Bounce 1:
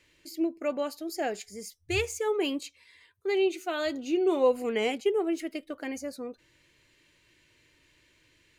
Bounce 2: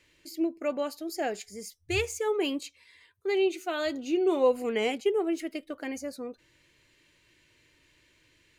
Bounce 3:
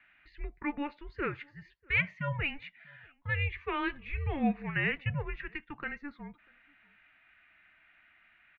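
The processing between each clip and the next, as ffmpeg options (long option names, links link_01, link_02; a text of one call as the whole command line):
ffmpeg -i in.wav -af anull out.wav
ffmpeg -i in.wav -filter_complex "[0:a]tiltshelf=frequency=1100:gain=-9.5,asplit=2[link_01][link_02];[link_02]adelay=641.4,volume=-28dB,highshelf=frequency=4000:gain=-14.4[link_03];[link_01][link_03]amix=inputs=2:normalize=0,highpass=frequency=320:width_type=q:width=0.5412,highpass=frequency=320:width_type=q:width=1.307,lowpass=frequency=2700:width_type=q:width=0.5176,lowpass=frequency=2700:width_type=q:width=0.7071,lowpass=frequency=2700:width_type=q:width=1.932,afreqshift=-290" out.wav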